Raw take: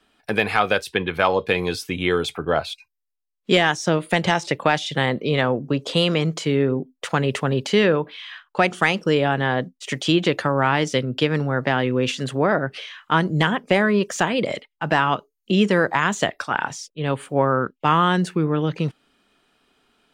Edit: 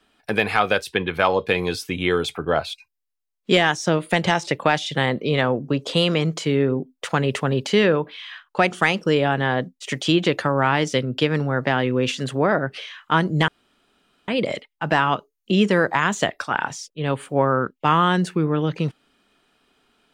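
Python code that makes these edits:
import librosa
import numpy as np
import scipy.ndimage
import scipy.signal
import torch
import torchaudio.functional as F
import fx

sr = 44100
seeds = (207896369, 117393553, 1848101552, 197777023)

y = fx.edit(x, sr, fx.room_tone_fill(start_s=13.48, length_s=0.8), tone=tone)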